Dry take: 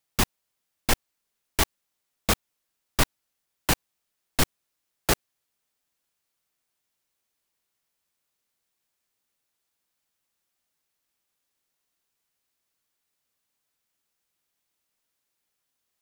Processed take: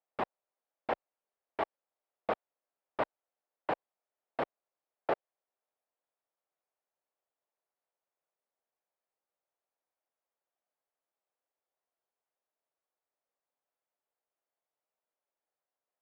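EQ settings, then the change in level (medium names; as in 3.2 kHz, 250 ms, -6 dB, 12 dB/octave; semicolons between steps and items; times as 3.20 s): band-pass filter 610 Hz, Q 1.8; distance through air 450 m; tilt EQ +2.5 dB/octave; +3.0 dB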